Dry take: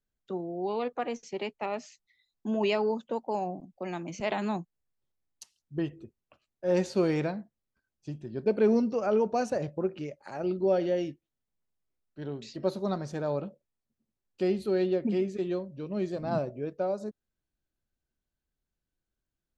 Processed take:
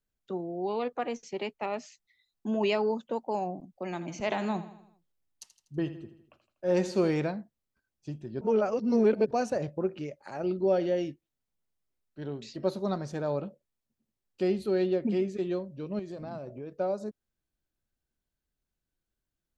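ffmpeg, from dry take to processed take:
-filter_complex "[0:a]asettb=1/sr,asplit=3[a][b][c];[a]atrim=end=3.844[d];[b]atrim=start=3.84:end=7.09,asetpts=PTS-STARTPTS,afade=t=in:d=0.004:c=qsin,afade=t=out:st=3.246:d=0.004:c=qsin,aecho=1:1:81|162|243|324|405:0.211|0.108|0.055|0.028|0.0143,atrim=end_sample=143325[e];[c]atrim=start=7.086[f];[d][e]acrossfade=d=0.004:c1=hsin:c2=qsin[g];[g][f]acrossfade=d=0.004:c1=qsin:c2=hsin,asettb=1/sr,asplit=3[h][i][j];[h]atrim=end=15.994[k];[i]atrim=start=15.99:end=16.79,asetpts=PTS-STARTPTS,afade=t=in:d=0.004:c=qsin,afade=t=out:st=0.796:d=0.004:c=qsin,acompressor=threshold=-36dB:ratio=5:attack=3.2:release=140:knee=1:detection=peak[l];[j]atrim=start=16.786[m];[k][l]acrossfade=d=0.004:c1=hsin:c2=qsin[n];[n][m]acrossfade=d=0.004:c1=qsin:c2=hsin,asplit=3[o][p][q];[o]atrim=end=8.412[r];[p]atrim=start=8.408:end=9.312,asetpts=PTS-STARTPTS,areverse[s];[q]atrim=start=9.308[t];[r][s]acrossfade=d=0.004:c1=hsin:c2=hsin[u];[u][t]acrossfade=d=0.004:c1=hsin:c2=hsin"

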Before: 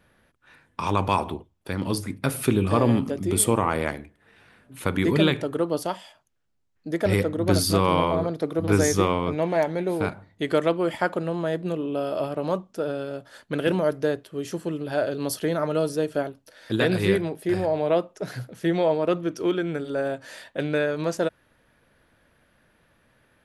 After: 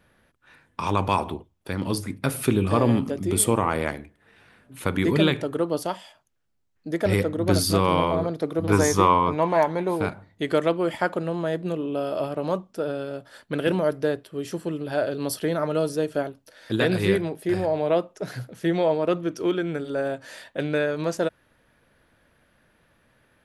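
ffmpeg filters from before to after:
-filter_complex "[0:a]asettb=1/sr,asplit=3[a][b][c];[a]atrim=end=8.724[d];[b]atrim=start=8.72:end=9.96,asetpts=PTS-STARTPTS,afade=t=in:d=0.004:c=qsin,afade=t=out:st=1.236:d=0.004:c=qsin,equalizer=f=1k:t=o:w=0.44:g=13[e];[c]atrim=start=9.956[f];[d][e]acrossfade=d=0.004:c1=hsin:c2=qsin[g];[g][f]acrossfade=d=0.004:c1=qsin:c2=hsin,asettb=1/sr,asplit=3[h][i][j];[h]atrim=end=12.704[k];[i]atrim=start=12.7:end=15.75,asetpts=PTS-STARTPTS,afade=t=in:d=0.004:c=qsin,afade=t=out:st=3.046:d=0.004:c=qsin,bandreject=f=6.5k:w=12[l];[j]atrim=start=15.746[m];[k][l]acrossfade=d=0.004:c1=hsin:c2=qsin[n];[n][m]acrossfade=d=0.004:c1=qsin:c2=hsin"

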